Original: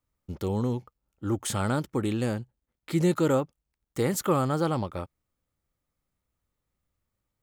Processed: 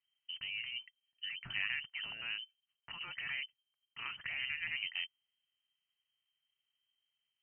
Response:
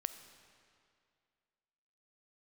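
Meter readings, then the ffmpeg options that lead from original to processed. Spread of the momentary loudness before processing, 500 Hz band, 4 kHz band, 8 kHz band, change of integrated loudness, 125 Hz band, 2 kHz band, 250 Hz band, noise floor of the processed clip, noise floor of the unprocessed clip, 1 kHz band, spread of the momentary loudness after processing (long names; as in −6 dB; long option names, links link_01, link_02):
14 LU, below −40 dB, +3.5 dB, below −40 dB, −11.5 dB, −33.0 dB, +3.0 dB, −39.5 dB, below −85 dBFS, −84 dBFS, −22.5 dB, 10 LU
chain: -af "afftfilt=real='re*lt(hypot(re,im),0.178)':imag='im*lt(hypot(re,im),0.178)':win_size=1024:overlap=0.75,lowpass=frequency=2700:width_type=q:width=0.5098,lowpass=frequency=2700:width_type=q:width=0.6013,lowpass=frequency=2700:width_type=q:width=0.9,lowpass=frequency=2700:width_type=q:width=2.563,afreqshift=-3200,equalizer=frequency=125:width_type=o:width=1:gain=10,equalizer=frequency=500:width_type=o:width=1:gain=-11,equalizer=frequency=1000:width_type=o:width=1:gain=-4,volume=-4dB"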